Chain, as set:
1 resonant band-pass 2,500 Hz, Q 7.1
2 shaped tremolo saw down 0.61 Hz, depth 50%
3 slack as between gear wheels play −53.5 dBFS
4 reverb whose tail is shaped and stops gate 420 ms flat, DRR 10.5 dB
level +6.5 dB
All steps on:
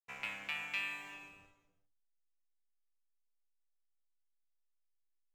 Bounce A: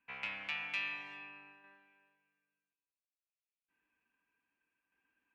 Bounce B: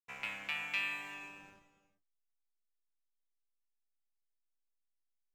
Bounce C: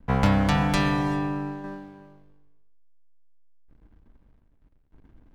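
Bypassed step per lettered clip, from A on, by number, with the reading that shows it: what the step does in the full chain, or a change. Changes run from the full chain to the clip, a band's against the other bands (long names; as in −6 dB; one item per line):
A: 3, distortion level −12 dB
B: 2, change in integrated loudness +2.0 LU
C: 1, 125 Hz band +21.5 dB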